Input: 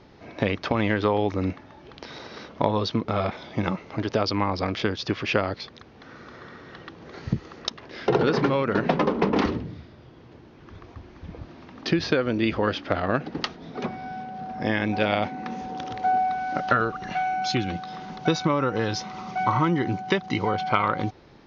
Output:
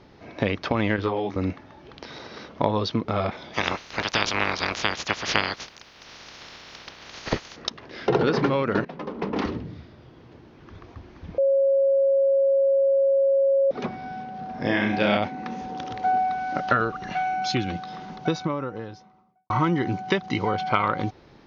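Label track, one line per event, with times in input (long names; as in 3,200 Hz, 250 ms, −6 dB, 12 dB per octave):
0.960000	1.360000	micro pitch shift up and down each way 23 cents
3.530000	7.550000	ceiling on every frequency bin ceiling under each frame's peak by 29 dB
8.850000	9.800000	fade in, from −21.5 dB
11.380000	13.710000	beep over 547 Hz −16.5 dBFS
14.510000	15.170000	flutter between parallel walls apart 5.8 metres, dies away in 0.55 s
17.790000	19.500000	fade out and dull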